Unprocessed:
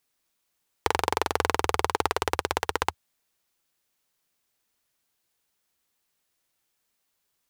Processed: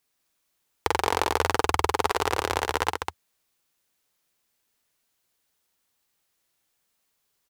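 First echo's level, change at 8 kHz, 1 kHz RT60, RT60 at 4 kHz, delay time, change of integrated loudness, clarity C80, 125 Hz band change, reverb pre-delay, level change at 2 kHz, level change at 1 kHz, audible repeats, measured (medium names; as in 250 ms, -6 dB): -7.0 dB, +2.0 dB, no reverb, no reverb, 49 ms, +1.5 dB, no reverb, +2.5 dB, no reverb, +1.5 dB, +2.0 dB, 2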